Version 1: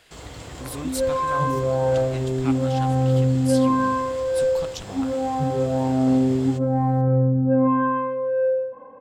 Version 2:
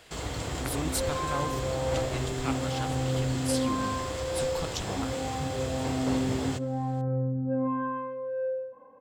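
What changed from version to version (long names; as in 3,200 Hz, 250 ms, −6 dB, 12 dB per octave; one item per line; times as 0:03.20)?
first sound +4.5 dB
second sound −10.0 dB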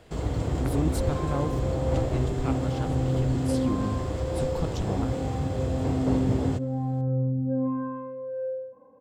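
second sound −4.5 dB
master: add tilt shelving filter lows +8.5 dB, about 890 Hz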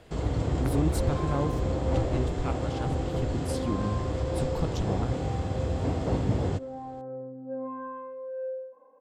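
first sound: add low-pass filter 7,600 Hz 12 dB per octave
second sound: add high-pass filter 510 Hz 12 dB per octave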